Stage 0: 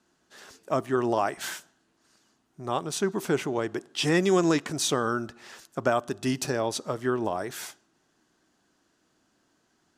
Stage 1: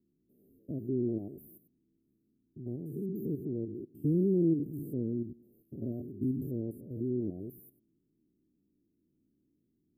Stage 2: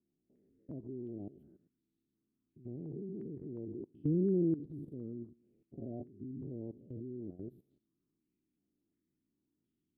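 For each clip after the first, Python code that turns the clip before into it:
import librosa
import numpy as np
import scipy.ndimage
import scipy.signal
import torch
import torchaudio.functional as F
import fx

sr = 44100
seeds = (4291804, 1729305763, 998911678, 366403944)

y1 = fx.spec_steps(x, sr, hold_ms=100)
y1 = scipy.signal.sosfilt(scipy.signal.cheby2(4, 60, [1000.0, 6600.0], 'bandstop', fs=sr, output='sos'), y1)
y2 = fx.level_steps(y1, sr, step_db=14)
y2 = fx.filter_held_lowpass(y2, sr, hz=2.8, low_hz=750.0, high_hz=3900.0)
y2 = y2 * librosa.db_to_amplitude(-1.5)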